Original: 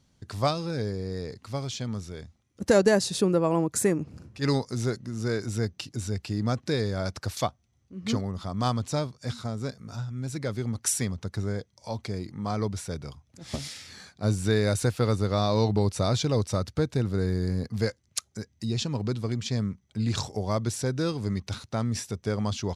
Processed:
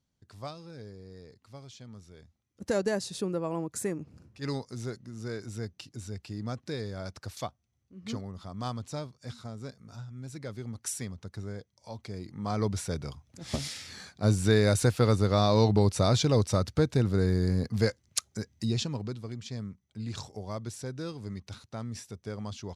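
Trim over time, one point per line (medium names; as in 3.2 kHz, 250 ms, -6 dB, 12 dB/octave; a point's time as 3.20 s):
1.88 s -15 dB
2.66 s -8.5 dB
11.99 s -8.5 dB
12.72 s +1 dB
18.66 s +1 dB
19.21 s -9.5 dB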